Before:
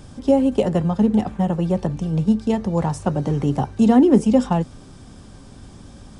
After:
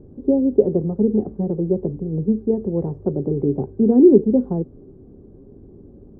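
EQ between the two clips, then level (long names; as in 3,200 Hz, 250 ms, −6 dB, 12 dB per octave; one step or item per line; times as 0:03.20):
low-pass with resonance 400 Hz, resonance Q 4.9
−5.0 dB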